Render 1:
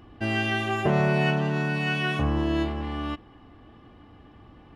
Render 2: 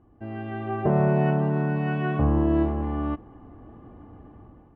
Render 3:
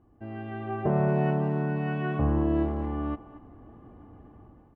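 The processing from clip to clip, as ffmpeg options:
-af "lowpass=1000,dynaudnorm=f=260:g=5:m=4.47,volume=0.398"
-filter_complex "[0:a]asplit=2[s0][s1];[s1]adelay=230,highpass=300,lowpass=3400,asoftclip=type=hard:threshold=0.0944,volume=0.178[s2];[s0][s2]amix=inputs=2:normalize=0,volume=0.668"

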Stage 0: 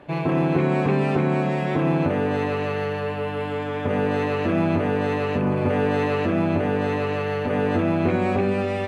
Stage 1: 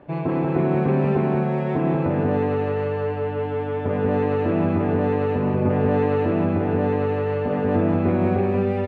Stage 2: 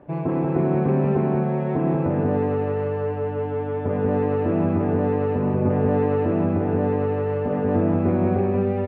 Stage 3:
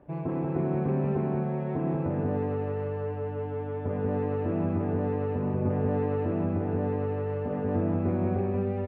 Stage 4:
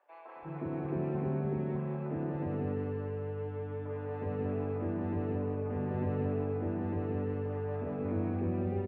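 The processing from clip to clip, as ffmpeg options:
-af "lowpass=f=1000:p=1,aecho=1:1:186:0.631"
-af "lowpass=f=1300:p=1"
-af "lowshelf=f=65:g=10.5,volume=0.398"
-filter_complex "[0:a]acrossover=split=160|690[s0][s1][s2];[s1]adelay=360[s3];[s0]adelay=400[s4];[s4][s3][s2]amix=inputs=3:normalize=0,volume=0.596"

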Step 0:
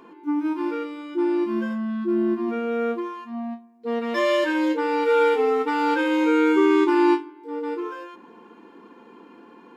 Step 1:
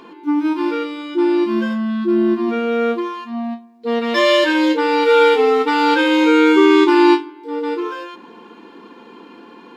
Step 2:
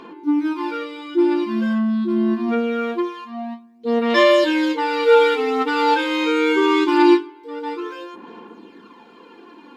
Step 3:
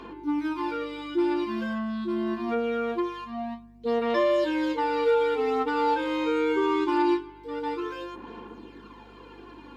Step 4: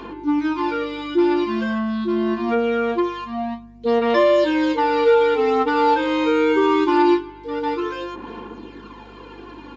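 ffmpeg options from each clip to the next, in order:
-af "equalizer=f=3900:w=1.2:g=8.5,volume=2.11"
-af "aphaser=in_gain=1:out_gain=1:delay=4.8:decay=0.5:speed=0.24:type=sinusoidal,volume=0.596"
-filter_complex "[0:a]acrossover=split=370|1100[s0][s1][s2];[s0]acompressor=threshold=0.0224:ratio=4[s3];[s1]acompressor=threshold=0.1:ratio=4[s4];[s2]acompressor=threshold=0.0158:ratio=4[s5];[s3][s4][s5]amix=inputs=3:normalize=0,aeval=exprs='val(0)+0.00251*(sin(2*PI*50*n/s)+sin(2*PI*2*50*n/s)/2+sin(2*PI*3*50*n/s)/3+sin(2*PI*4*50*n/s)/4+sin(2*PI*5*50*n/s)/5)':c=same,volume=0.75"
-af "aresample=16000,aresample=44100,volume=2.37"

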